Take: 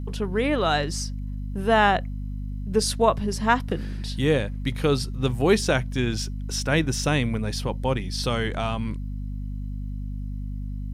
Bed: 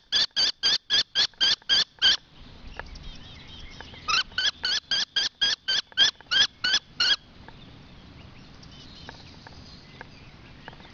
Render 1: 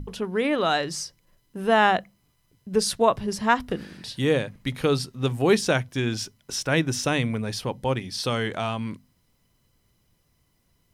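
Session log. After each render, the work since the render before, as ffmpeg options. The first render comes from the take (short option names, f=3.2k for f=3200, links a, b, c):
-af "bandreject=f=50:t=h:w=6,bandreject=f=100:t=h:w=6,bandreject=f=150:t=h:w=6,bandreject=f=200:t=h:w=6,bandreject=f=250:t=h:w=6"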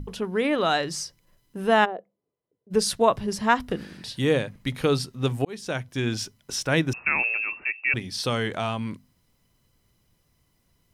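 -filter_complex "[0:a]asplit=3[a][b][c];[a]afade=t=out:st=1.84:d=0.02[d];[b]bandpass=f=460:t=q:w=4,afade=t=in:st=1.84:d=0.02,afade=t=out:st=2.7:d=0.02[e];[c]afade=t=in:st=2.7:d=0.02[f];[d][e][f]amix=inputs=3:normalize=0,asettb=1/sr,asplit=3[g][h][i];[g]atrim=end=6.934[j];[h]atrim=start=6.93:end=7.94,asetpts=PTS-STARTPTS,afade=t=in:d=0.004:c=qsin,afade=t=out:st=1.006:d=0.004:c=qsin,lowpass=f=2.4k:t=q:w=0.5098,lowpass=f=2.4k:t=q:w=0.6013,lowpass=f=2.4k:t=q:w=0.9,lowpass=f=2.4k:t=q:w=2.563,afreqshift=-2800[k];[i]atrim=start=7.936[l];[j][k]acrossfade=d=0.004:c1=hsin:c2=qsin[m];[m][l]acrossfade=d=0.004:c1=qsin:c2=hsin,asplit=2[n][o];[n]atrim=end=5.45,asetpts=PTS-STARTPTS,afade=t=out:st=5.446:d=0.004:c=hsin[p];[o]atrim=start=5.45,asetpts=PTS-STARTPTS,afade=t=in:d=0.63[q];[p][q]concat=n=2:v=0:a=1"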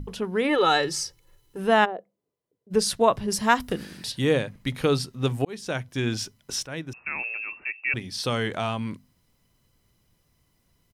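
-filter_complex "[0:a]asplit=3[a][b][c];[a]afade=t=out:st=0.48:d=0.02[d];[b]aecho=1:1:2.3:0.96,afade=t=in:st=0.48:d=0.02,afade=t=out:st=1.57:d=0.02[e];[c]afade=t=in:st=1.57:d=0.02[f];[d][e][f]amix=inputs=3:normalize=0,asettb=1/sr,asplit=3[g][h][i];[g]atrim=end=3.304[j];[h]atrim=start=3.3:end=4.12,asetpts=PTS-STARTPTS,afade=t=in:d=0.004:c=qsin,afade=t=out:st=0.816:d=0.004:c=qsin,highshelf=f=5.7k:g=11.5[k];[i]atrim=start=4.116[l];[j][k]acrossfade=d=0.004:c1=hsin:c2=qsin[m];[m][l]acrossfade=d=0.004:c1=qsin:c2=hsin,asplit=2[n][o];[n]atrim=end=6.66,asetpts=PTS-STARTPTS,afade=t=out:st=6.656:d=0.004:c=hsin:silence=0.199526[p];[o]atrim=start=6.66,asetpts=PTS-STARTPTS,afade=t=in:d=1.78:silence=0.199526[q];[p][q]concat=n=2:v=0:a=1"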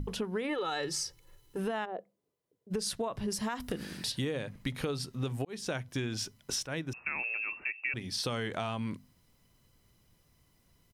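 -af "alimiter=limit=-16dB:level=0:latency=1:release=102,acompressor=threshold=-31dB:ratio=6"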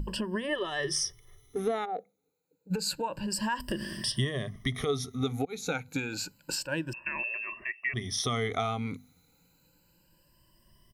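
-af "afftfilt=real='re*pow(10,18/40*sin(2*PI*(1.3*log(max(b,1)*sr/1024/100)/log(2)-(0.29)*(pts-256)/sr)))':imag='im*pow(10,18/40*sin(2*PI*(1.3*log(max(b,1)*sr/1024/100)/log(2)-(0.29)*(pts-256)/sr)))':win_size=1024:overlap=0.75"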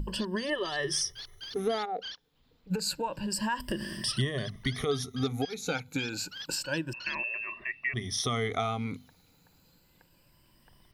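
-filter_complex "[1:a]volume=-21.5dB[a];[0:a][a]amix=inputs=2:normalize=0"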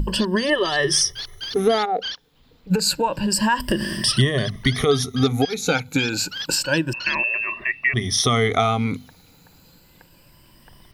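-af "volume=11.5dB"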